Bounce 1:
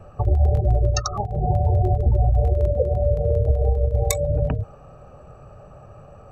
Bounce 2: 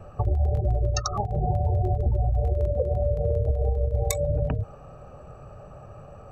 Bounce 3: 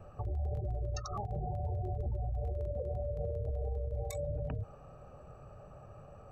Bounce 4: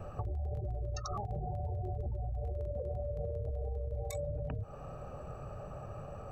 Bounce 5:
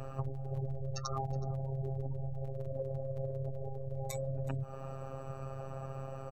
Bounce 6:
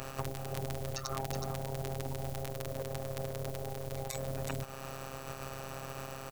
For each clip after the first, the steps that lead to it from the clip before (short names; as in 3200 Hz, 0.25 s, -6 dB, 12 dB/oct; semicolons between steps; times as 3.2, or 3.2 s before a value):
compressor 2.5:1, threshold -22 dBFS, peak gain reduction 6.5 dB
limiter -21 dBFS, peak gain reduction 10.5 dB; gain -8 dB
compressor, threshold -42 dBFS, peak gain reduction 10 dB; gain +7.5 dB
robotiser 134 Hz; echo 0.371 s -20.5 dB; gain +4.5 dB
spectral contrast lowered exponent 0.47; gain -1 dB